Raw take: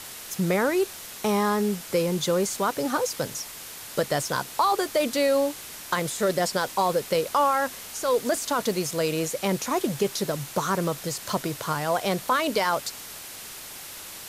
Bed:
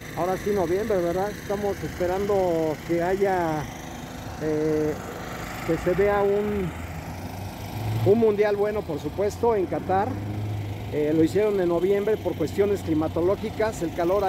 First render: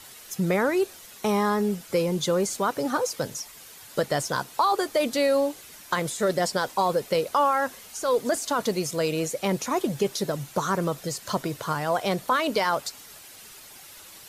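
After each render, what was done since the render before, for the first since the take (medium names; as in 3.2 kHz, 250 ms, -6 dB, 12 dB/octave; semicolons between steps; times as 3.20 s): noise reduction 9 dB, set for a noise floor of -41 dBFS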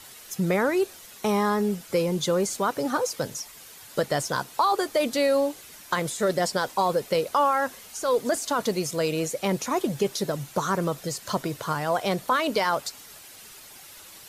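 no audible change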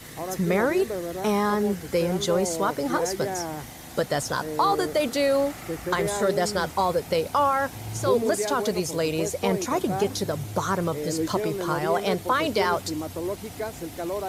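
add bed -7.5 dB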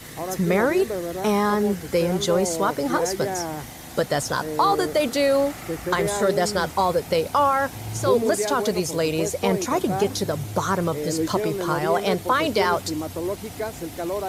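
trim +2.5 dB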